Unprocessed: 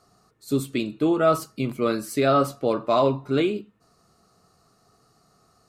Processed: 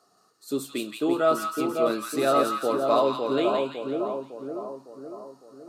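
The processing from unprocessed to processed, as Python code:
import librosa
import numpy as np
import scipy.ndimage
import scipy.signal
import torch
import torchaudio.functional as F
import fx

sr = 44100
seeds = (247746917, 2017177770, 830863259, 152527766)

y = scipy.signal.sosfilt(scipy.signal.butter(2, 290.0, 'highpass', fs=sr, output='sos'), x)
y = fx.peak_eq(y, sr, hz=2200.0, db=-7.5, octaves=0.25)
y = fx.echo_split(y, sr, split_hz=1100.0, low_ms=556, high_ms=170, feedback_pct=52, wet_db=-3.5)
y = y * librosa.db_to_amplitude(-2.0)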